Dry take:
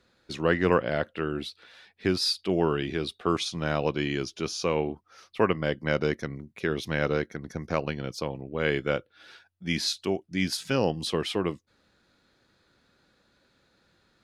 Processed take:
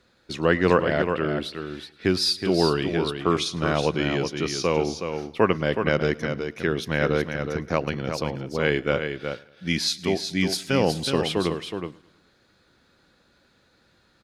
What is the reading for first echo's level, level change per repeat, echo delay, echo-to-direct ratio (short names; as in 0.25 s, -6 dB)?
-22.0 dB, no steady repeat, 0.107 s, -7.0 dB